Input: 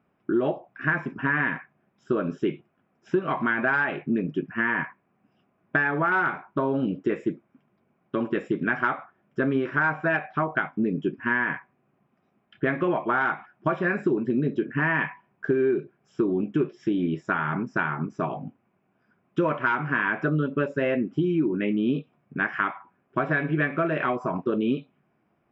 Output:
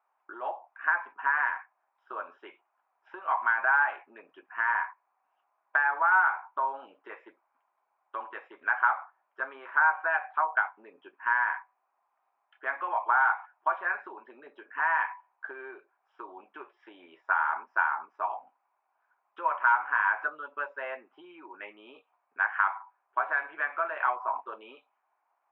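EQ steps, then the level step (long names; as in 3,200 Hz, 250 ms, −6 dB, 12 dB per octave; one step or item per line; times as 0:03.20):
dynamic equaliser 1,500 Hz, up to +6 dB, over −37 dBFS, Q 4.7
four-pole ladder high-pass 810 Hz, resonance 65%
high-frequency loss of the air 390 metres
+6.0 dB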